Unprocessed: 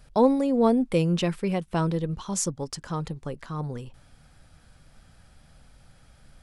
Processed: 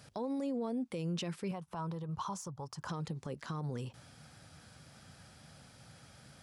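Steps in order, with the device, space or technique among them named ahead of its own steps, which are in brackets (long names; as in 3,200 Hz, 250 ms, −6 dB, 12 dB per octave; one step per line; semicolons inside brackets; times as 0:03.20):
broadcast voice chain (high-pass filter 88 Hz 24 dB per octave; de-essing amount 45%; downward compressor 4 to 1, threshold −34 dBFS, peak gain reduction 16.5 dB; parametric band 5,600 Hz +4 dB 0.91 octaves; brickwall limiter −31.5 dBFS, peak gain reduction 10.5 dB)
0:01.51–0:02.89: octave-band graphic EQ 125/250/500/1,000/2,000/4,000/8,000 Hz +3/−10/−4/+9/−7/−5/−6 dB
level +1.5 dB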